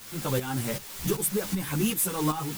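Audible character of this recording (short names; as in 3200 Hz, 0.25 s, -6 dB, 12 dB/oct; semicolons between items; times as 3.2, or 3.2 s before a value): a quantiser's noise floor 6-bit, dither triangular; tremolo saw up 2.6 Hz, depth 70%; a shimmering, thickened sound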